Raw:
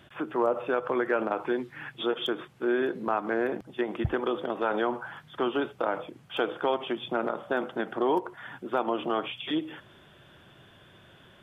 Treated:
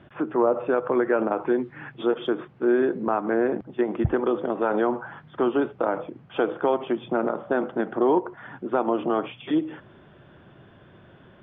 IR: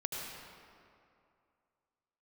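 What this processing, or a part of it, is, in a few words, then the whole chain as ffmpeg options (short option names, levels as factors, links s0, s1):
phone in a pocket: -af "lowpass=3200,equalizer=f=250:t=o:w=2:g=3,highshelf=f=2400:g=-11.5,volume=1.58"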